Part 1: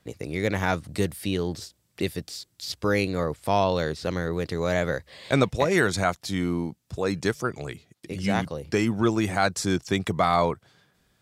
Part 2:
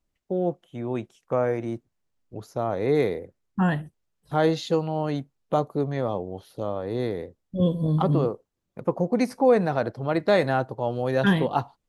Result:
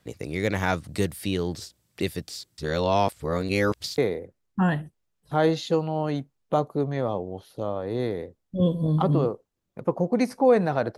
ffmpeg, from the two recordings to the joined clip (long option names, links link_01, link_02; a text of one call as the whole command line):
ffmpeg -i cue0.wav -i cue1.wav -filter_complex "[0:a]apad=whole_dur=10.97,atrim=end=10.97,asplit=2[link_01][link_02];[link_01]atrim=end=2.582[link_03];[link_02]atrim=start=2.578:end=3.982,asetpts=PTS-STARTPTS,areverse[link_04];[1:a]atrim=start=2.978:end=9.97[link_05];[link_03][link_04]acrossfade=duration=0.004:curve1=hsin:curve2=hsin[link_06];[link_06][link_05]acrossfade=duration=0.004:curve1=hsin:curve2=hsin" out.wav